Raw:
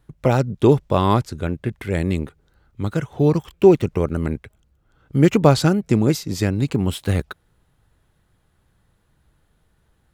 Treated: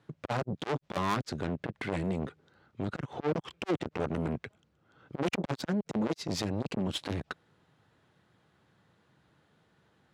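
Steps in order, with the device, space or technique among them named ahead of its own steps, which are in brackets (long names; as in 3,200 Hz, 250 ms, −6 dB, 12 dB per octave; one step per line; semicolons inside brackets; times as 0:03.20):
valve radio (band-pass filter 140–5,300 Hz; tube saturation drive 26 dB, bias 0.5; saturating transformer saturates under 350 Hz)
high-pass filter 76 Hz
level +3 dB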